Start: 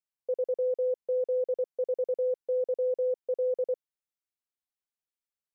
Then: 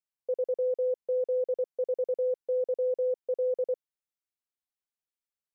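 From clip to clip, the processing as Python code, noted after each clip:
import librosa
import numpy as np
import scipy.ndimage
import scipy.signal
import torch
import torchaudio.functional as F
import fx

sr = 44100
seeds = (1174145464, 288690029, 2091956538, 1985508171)

y = x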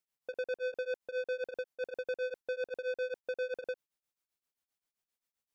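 y = 10.0 ** (-37.5 / 20.0) * np.tanh(x / 10.0 ** (-37.5 / 20.0))
y = y * np.abs(np.cos(np.pi * 7.6 * np.arange(len(y)) / sr))
y = F.gain(torch.from_numpy(y), 6.0).numpy()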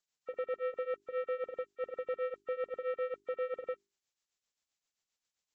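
y = fx.freq_compress(x, sr, knee_hz=1000.0, ratio=1.5)
y = fx.hum_notches(y, sr, base_hz=50, count=8)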